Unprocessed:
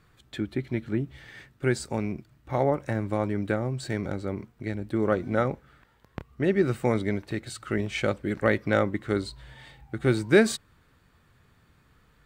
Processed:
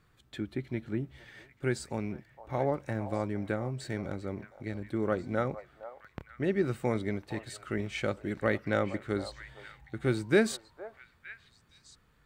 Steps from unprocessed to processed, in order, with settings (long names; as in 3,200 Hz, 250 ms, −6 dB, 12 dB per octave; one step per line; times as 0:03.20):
echo through a band-pass that steps 462 ms, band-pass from 790 Hz, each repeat 1.4 octaves, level −9.5 dB
level −5.5 dB